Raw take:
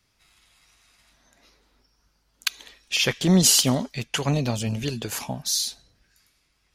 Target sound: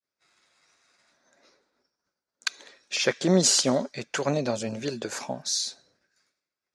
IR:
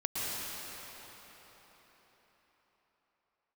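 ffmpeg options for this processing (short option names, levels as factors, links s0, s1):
-af "agate=range=0.0224:threshold=0.00141:ratio=3:detection=peak,highpass=200,equalizer=f=370:t=q:w=4:g=4,equalizer=f=560:t=q:w=4:g=8,equalizer=f=1500:t=q:w=4:g=5,equalizer=f=3000:t=q:w=4:g=-9,lowpass=f=8100:w=0.5412,lowpass=f=8100:w=1.3066,volume=0.794"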